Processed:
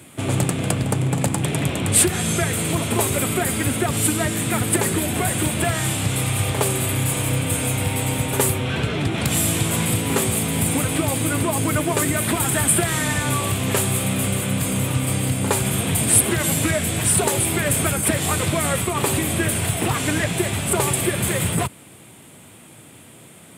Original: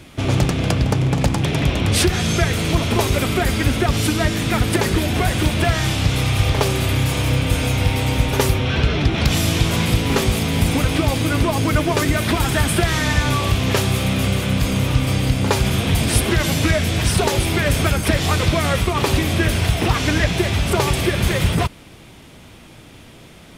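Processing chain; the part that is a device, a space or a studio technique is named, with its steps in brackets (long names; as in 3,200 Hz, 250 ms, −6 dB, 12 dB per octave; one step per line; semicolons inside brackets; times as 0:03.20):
budget condenser microphone (high-pass filter 97 Hz 24 dB per octave; high shelf with overshoot 6,800 Hz +7 dB, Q 3)
level −2.5 dB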